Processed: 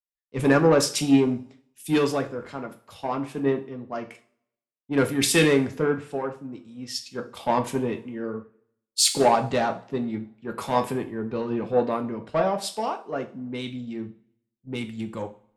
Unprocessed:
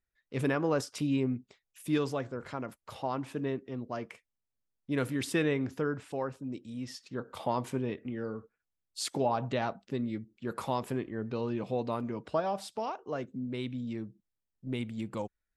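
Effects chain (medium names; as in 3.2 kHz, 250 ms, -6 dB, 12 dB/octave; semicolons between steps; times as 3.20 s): Chebyshev shaper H 5 -18 dB, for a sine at -17 dBFS; two-slope reverb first 0.42 s, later 1.7 s, from -18 dB, DRR 4.5 dB; three bands expanded up and down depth 100%; trim +3.5 dB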